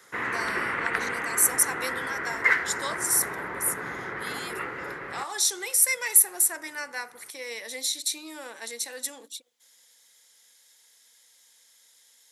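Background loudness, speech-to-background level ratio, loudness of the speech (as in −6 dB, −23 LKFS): −29.5 LKFS, 4.0 dB, −25.5 LKFS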